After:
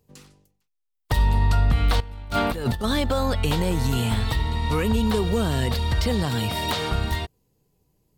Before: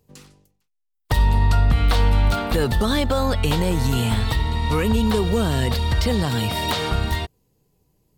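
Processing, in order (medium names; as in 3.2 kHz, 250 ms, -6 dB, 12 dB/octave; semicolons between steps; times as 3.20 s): 2.00–2.84 s: compressor with a negative ratio -23 dBFS, ratio -0.5; trim -2.5 dB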